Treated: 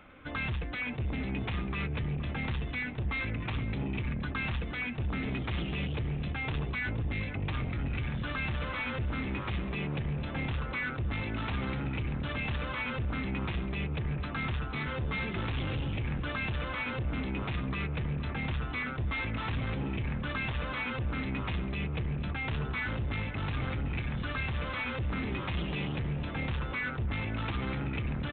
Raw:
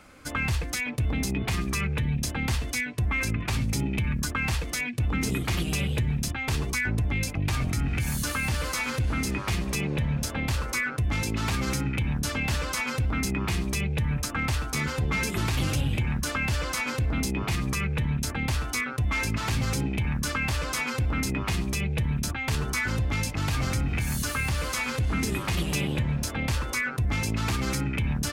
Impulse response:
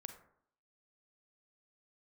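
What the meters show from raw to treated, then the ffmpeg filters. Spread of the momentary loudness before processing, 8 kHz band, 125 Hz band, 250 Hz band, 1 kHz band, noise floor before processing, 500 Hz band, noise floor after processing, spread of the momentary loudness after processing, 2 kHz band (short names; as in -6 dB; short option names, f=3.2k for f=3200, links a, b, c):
2 LU, under -40 dB, -6.0 dB, -5.5 dB, -5.0 dB, -34 dBFS, -4.5 dB, -37 dBFS, 1 LU, -5.5 dB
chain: -filter_complex "[0:a]aresample=8000,asoftclip=type=tanh:threshold=-27.5dB,aresample=44100,asplit=2[a][b];[b]adelay=471,lowpass=f=1.5k:p=1,volume=-10dB,asplit=2[c][d];[d]adelay=471,lowpass=f=1.5k:p=1,volume=0.5,asplit=2[e][f];[f]adelay=471,lowpass=f=1.5k:p=1,volume=0.5,asplit=2[g][h];[h]adelay=471,lowpass=f=1.5k:p=1,volume=0.5,asplit=2[i][j];[j]adelay=471,lowpass=f=1.5k:p=1,volume=0.5[k];[a][c][e][g][i][k]amix=inputs=6:normalize=0,volume=-2dB"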